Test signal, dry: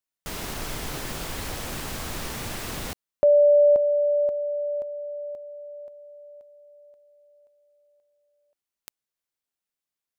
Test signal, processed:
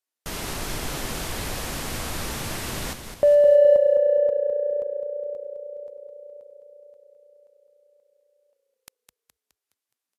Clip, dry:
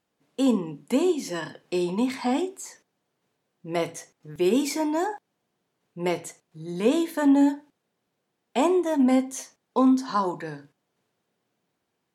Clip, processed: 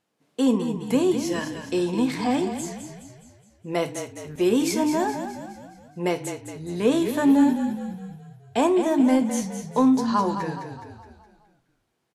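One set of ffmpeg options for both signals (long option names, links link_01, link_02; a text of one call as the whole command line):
ffmpeg -i in.wav -filter_complex "[0:a]asplit=2[link_01][link_02];[link_02]asoftclip=type=tanh:threshold=-21dB,volume=-11.5dB[link_03];[link_01][link_03]amix=inputs=2:normalize=0,asplit=7[link_04][link_05][link_06][link_07][link_08][link_09][link_10];[link_05]adelay=209,afreqshift=-30,volume=-8.5dB[link_11];[link_06]adelay=418,afreqshift=-60,volume=-14.5dB[link_12];[link_07]adelay=627,afreqshift=-90,volume=-20.5dB[link_13];[link_08]adelay=836,afreqshift=-120,volume=-26.6dB[link_14];[link_09]adelay=1045,afreqshift=-150,volume=-32.6dB[link_15];[link_10]adelay=1254,afreqshift=-180,volume=-38.6dB[link_16];[link_04][link_11][link_12][link_13][link_14][link_15][link_16]amix=inputs=7:normalize=0" -ar 32000 -c:a libvorbis -b:a 64k out.ogg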